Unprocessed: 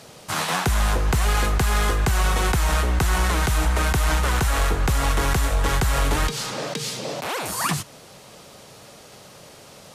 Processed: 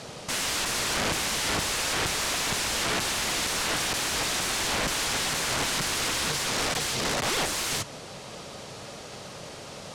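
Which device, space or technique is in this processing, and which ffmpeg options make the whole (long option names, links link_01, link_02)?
overflowing digital effects unit: -af "aeval=exprs='(mod(18.8*val(0)+1,2)-1)/18.8':channel_layout=same,lowpass=8300,volume=4.5dB"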